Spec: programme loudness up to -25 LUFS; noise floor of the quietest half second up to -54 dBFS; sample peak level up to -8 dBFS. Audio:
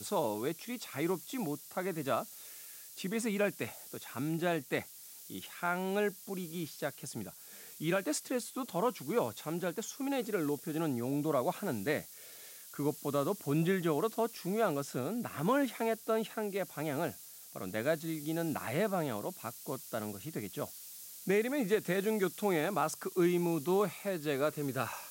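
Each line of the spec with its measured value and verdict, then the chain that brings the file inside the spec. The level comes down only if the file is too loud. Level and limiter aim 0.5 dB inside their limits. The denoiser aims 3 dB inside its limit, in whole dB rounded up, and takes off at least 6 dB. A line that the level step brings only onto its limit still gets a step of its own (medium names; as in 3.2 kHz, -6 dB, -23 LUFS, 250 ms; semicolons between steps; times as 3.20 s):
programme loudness -35.0 LUFS: pass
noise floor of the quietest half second -52 dBFS: fail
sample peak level -18.5 dBFS: pass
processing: noise reduction 6 dB, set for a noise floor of -52 dBFS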